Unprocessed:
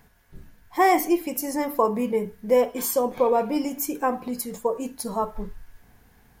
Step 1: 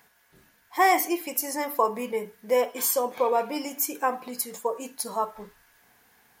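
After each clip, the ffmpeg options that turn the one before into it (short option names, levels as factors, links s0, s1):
-af "highpass=f=900:p=1,volume=1.33"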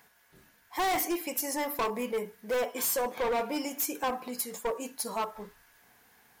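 -af "asoftclip=type=hard:threshold=0.0562,volume=0.891"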